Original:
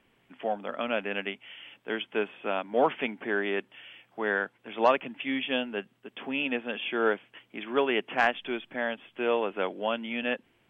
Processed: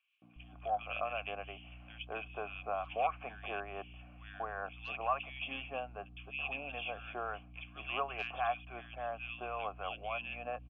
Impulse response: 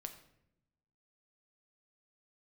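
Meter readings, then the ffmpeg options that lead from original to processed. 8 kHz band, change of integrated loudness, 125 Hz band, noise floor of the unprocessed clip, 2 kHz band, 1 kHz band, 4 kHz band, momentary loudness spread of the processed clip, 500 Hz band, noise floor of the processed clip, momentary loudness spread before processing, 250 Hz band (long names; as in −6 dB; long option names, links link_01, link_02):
can't be measured, −10.0 dB, −0.5 dB, −68 dBFS, −10.5 dB, −5.5 dB, −10.0 dB, 12 LU, −12.5 dB, −55 dBFS, 11 LU, −20.5 dB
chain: -filter_complex "[0:a]asplit=3[link_01][link_02][link_03];[link_01]bandpass=frequency=730:width_type=q:width=8,volume=0dB[link_04];[link_02]bandpass=frequency=1090:width_type=q:width=8,volume=-6dB[link_05];[link_03]bandpass=frequency=2440:width_type=q:width=8,volume=-9dB[link_06];[link_04][link_05][link_06]amix=inputs=3:normalize=0,acrossover=split=1000[link_07][link_08];[link_07]acompressor=threshold=-47dB:ratio=6[link_09];[link_09][link_08]amix=inputs=2:normalize=0,asubboost=boost=12:cutoff=84,aeval=exprs='val(0)+0.00112*(sin(2*PI*60*n/s)+sin(2*PI*2*60*n/s)/2+sin(2*PI*3*60*n/s)/3+sin(2*PI*4*60*n/s)/4+sin(2*PI*5*60*n/s)/5)':channel_layout=same,acrossover=split=1600[link_10][link_11];[link_10]aeval=exprs='val(0)*(1-0.5/2+0.5/2*cos(2*PI*3.6*n/s))':channel_layout=same[link_12];[link_11]aeval=exprs='val(0)*(1-0.5/2-0.5/2*cos(2*PI*3.6*n/s))':channel_layout=same[link_13];[link_12][link_13]amix=inputs=2:normalize=0,acrossover=split=150|2000[link_14][link_15][link_16];[link_15]adelay=220[link_17];[link_14]adelay=360[link_18];[link_18][link_17][link_16]amix=inputs=3:normalize=0,volume=10dB"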